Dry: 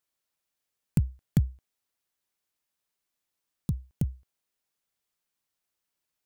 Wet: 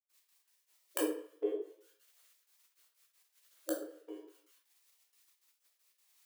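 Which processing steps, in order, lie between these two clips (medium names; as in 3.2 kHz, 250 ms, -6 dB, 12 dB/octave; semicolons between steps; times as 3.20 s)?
graphic EQ 125/500/1000 Hz -11/-8/+8 dB; phaser 1.4 Hz, delay 2 ms, feedback 64%; 1.46–3.78 s: peaking EQ 74 Hz +13 dB 2.1 oct; de-hum 110.6 Hz, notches 28; trance gate ".x.x.x.xxxx.xx" 158 bpm -60 dB; reverberation RT60 0.50 s, pre-delay 12 ms, DRR -4.5 dB; frequency shift +300 Hz; spectral gate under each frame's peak -10 dB weak; tape noise reduction on one side only encoder only; trim +1 dB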